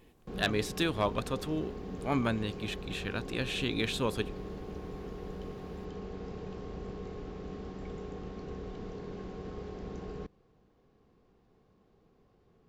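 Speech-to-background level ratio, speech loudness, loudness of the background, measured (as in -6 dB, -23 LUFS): 9.0 dB, -33.5 LUFS, -42.5 LUFS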